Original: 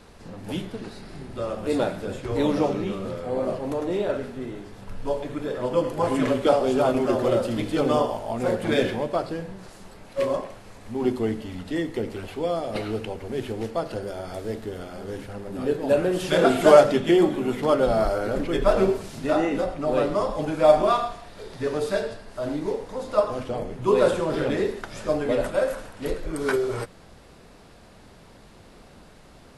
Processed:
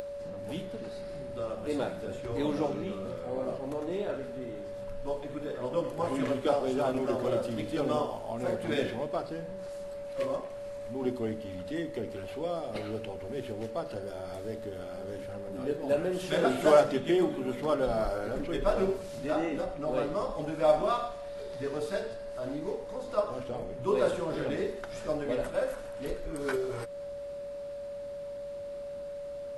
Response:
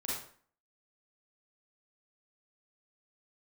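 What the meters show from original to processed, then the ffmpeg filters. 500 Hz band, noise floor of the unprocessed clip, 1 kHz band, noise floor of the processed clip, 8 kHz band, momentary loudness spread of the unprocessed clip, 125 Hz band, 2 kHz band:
-7.5 dB, -50 dBFS, -8.0 dB, -41 dBFS, -8.0 dB, 14 LU, -8.0 dB, -8.0 dB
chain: -af "aeval=exprs='val(0)+0.0251*sin(2*PI*570*n/s)':c=same,acompressor=mode=upward:threshold=-27dB:ratio=2.5,volume=-8dB"

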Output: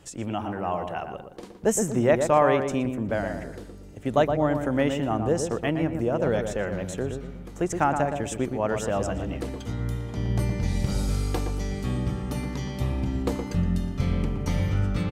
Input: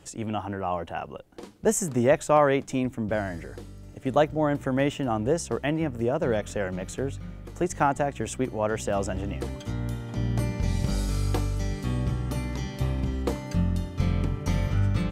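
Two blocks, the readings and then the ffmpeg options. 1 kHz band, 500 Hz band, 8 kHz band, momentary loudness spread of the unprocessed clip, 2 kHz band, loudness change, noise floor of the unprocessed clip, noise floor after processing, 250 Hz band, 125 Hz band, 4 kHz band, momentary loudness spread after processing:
+1.0 dB, +1.0 dB, 0.0 dB, 10 LU, +0.5 dB, +1.0 dB, -44 dBFS, -42 dBFS, +1.5 dB, 0.0 dB, 0.0 dB, 10 LU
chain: -filter_complex "[0:a]asplit=2[a][b];[b]adelay=118,lowpass=f=1.5k:p=1,volume=-5.5dB,asplit=2[c][d];[d]adelay=118,lowpass=f=1.5k:p=1,volume=0.39,asplit=2[e][f];[f]adelay=118,lowpass=f=1.5k:p=1,volume=0.39,asplit=2[g][h];[h]adelay=118,lowpass=f=1.5k:p=1,volume=0.39,asplit=2[i][j];[j]adelay=118,lowpass=f=1.5k:p=1,volume=0.39[k];[a][c][e][g][i][k]amix=inputs=6:normalize=0"

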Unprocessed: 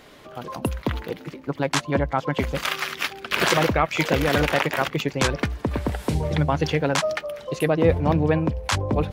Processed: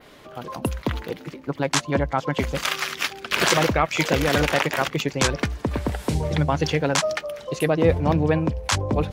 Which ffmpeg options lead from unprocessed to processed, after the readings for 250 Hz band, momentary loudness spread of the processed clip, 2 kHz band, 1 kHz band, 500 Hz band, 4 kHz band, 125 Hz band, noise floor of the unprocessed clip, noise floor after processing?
0.0 dB, 10 LU, +0.5 dB, 0.0 dB, 0.0 dB, +2.0 dB, 0.0 dB, -44 dBFS, -44 dBFS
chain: -af "adynamicequalizer=threshold=0.00631:dfrequency=6700:dqfactor=0.95:tfrequency=6700:tqfactor=0.95:attack=5:release=100:ratio=0.375:range=2.5:mode=boostabove:tftype=bell"

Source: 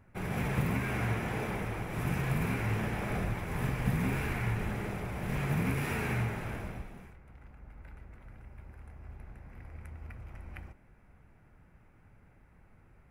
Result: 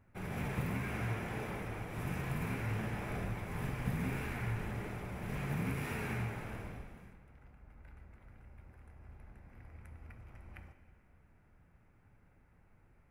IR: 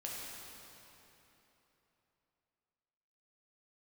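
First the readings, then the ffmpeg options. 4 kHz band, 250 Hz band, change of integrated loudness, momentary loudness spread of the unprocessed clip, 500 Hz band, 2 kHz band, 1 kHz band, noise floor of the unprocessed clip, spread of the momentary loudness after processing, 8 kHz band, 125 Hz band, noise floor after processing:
-5.5 dB, -5.5 dB, -5.5 dB, 20 LU, -5.5 dB, -5.5 dB, -5.5 dB, -61 dBFS, 20 LU, -5.5 dB, -5.5 dB, -66 dBFS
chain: -filter_complex "[0:a]asplit=2[a][b];[1:a]atrim=start_sample=2205,asetrate=83790,aresample=44100[c];[b][c]afir=irnorm=-1:irlink=0,volume=-1dB[d];[a][d]amix=inputs=2:normalize=0,volume=-8dB"

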